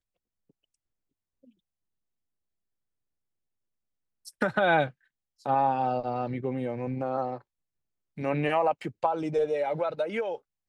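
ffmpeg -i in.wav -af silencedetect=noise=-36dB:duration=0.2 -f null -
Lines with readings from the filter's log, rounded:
silence_start: 0.00
silence_end: 4.27 | silence_duration: 4.27
silence_start: 4.89
silence_end: 5.46 | silence_duration: 0.57
silence_start: 7.37
silence_end: 8.18 | silence_duration: 0.81
silence_start: 10.36
silence_end: 10.68 | silence_duration: 0.33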